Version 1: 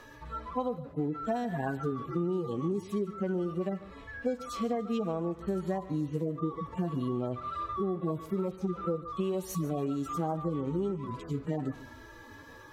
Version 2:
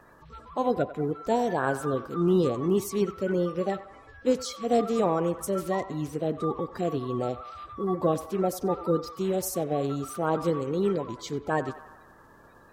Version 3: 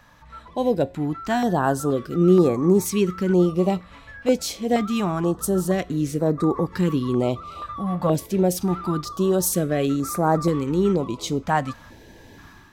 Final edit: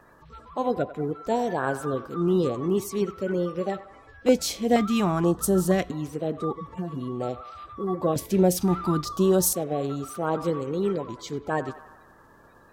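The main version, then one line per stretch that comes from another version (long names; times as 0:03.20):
2
0:04.26–0:05.91: punch in from 3
0:06.53–0:07.20: punch in from 1
0:08.16–0:09.53: punch in from 3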